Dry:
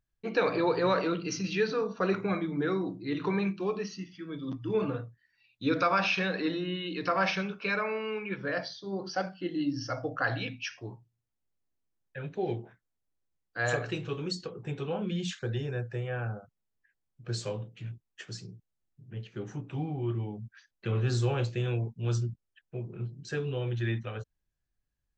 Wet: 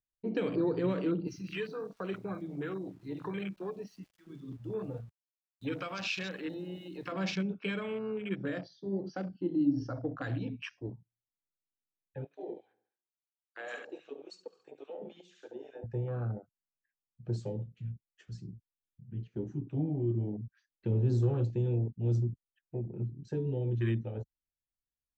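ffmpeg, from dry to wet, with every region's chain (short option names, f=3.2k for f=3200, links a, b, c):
-filter_complex "[0:a]asettb=1/sr,asplit=3[a][b][c];[a]atrim=end=1.274[d];[b]atrim=start=1.27:end=7.12,asetpts=PTS-STARTPTS,afade=t=in:d=0.004:c=qsin,afade=t=out:st=5.846:d=0.004:c=qsin,aeval=exprs='val(0)*gte(abs(val(0)),0.00447)':c=same,equalizer=f=250:t=o:w=1.5:g=-13[e];[c]atrim=start=7.116[f];[d][e]acrossfade=d=0.004:c1=hsin:c2=qsin[g];[g][f]acrossfade=d=0.004:c1=qsin:c2=hsin,asettb=1/sr,asplit=3[h][i][j];[h]atrim=end=12.244[k];[i]atrim=start=12.24:end=15.84,asetpts=PTS-STARTPTS,afade=t=in:d=0.004:c=qsin,afade=t=out:st=3.596:d=0.004:c=qsin,highpass=540,aecho=1:1:70|140|210|280|350|420:0.355|0.177|0.0887|0.0444|0.0222|0.0111,atrim=end_sample=158760,acrossover=split=750[l][m];[l]aeval=exprs='val(0)*(1-0.7/2+0.7/2*cos(2*PI*3.6*n/s))':c=same[n];[m]aeval=exprs='val(0)*(1-0.7/2-0.7/2*cos(2*PI*3.6*n/s))':c=same[o];[n][o]amix=inputs=2:normalize=0[p];[j]atrim=start=15.836[q];[k][p]acrossfade=d=0.004:c1=hsin:c2=qsin[r];[r][q]acrossfade=d=0.004:c1=qsin:c2=hsin,afwtdn=0.0158,equalizer=f=270:w=1.5:g=4.5,acrossover=split=400|3000[s][t][u];[t]acompressor=threshold=-43dB:ratio=6[v];[s][v][u]amix=inputs=3:normalize=0"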